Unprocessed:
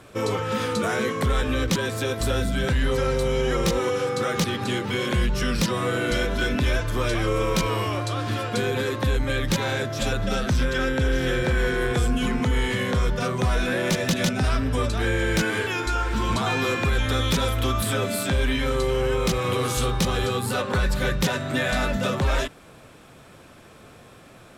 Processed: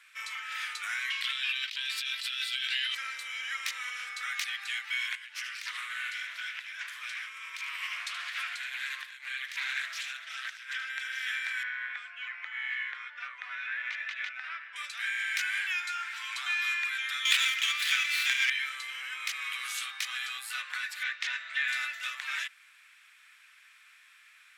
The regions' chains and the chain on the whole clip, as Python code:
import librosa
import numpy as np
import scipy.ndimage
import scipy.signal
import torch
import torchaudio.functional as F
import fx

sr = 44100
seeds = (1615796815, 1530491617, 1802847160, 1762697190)

y = fx.chain(x, sr, fx.bessel_highpass(hz=910.0, order=2),
    fx.band_shelf(hz=3600.0, db=11.5, octaves=1.2),
    fx.over_compress(threshold_db=-29.0, ratio=-1.0), at=(1.1, 2.95))
y = fx.chain(y, sr, fx.over_compress(threshold_db=-27.0, ratio=-1.0),
    fx.echo_single(ms=76, db=-10.5),
    fx.doppler_dist(depth_ms=0.26), at=(5.15, 10.9))
y = fx.chain(y, sr, fx.lowpass(hz=2100.0, slope=12),
    fx.notch(hz=360.0, q=11.0), at=(11.63, 14.76))
y = fx.chain(y, sr, fx.weighting(curve='D'),
    fx.running_max(window=5), at=(17.25, 18.5))
y = fx.chain(y, sr, fx.lowpass(hz=5400.0, slope=12),
    fx.doppler_dist(depth_ms=0.11), at=(21.03, 21.68))
y = scipy.signal.sosfilt(scipy.signal.butter(4, 1500.0, 'highpass', fs=sr, output='sos'), y)
y = fx.peak_eq(y, sr, hz=2100.0, db=10.0, octaves=1.0)
y = F.gain(torch.from_numpy(y), -8.5).numpy()